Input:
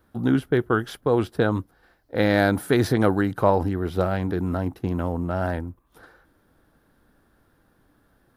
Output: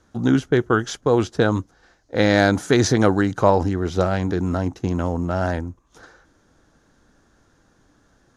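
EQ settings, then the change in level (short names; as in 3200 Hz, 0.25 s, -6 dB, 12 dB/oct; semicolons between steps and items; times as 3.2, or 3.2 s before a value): synth low-pass 6500 Hz, resonance Q 6.5; +3.0 dB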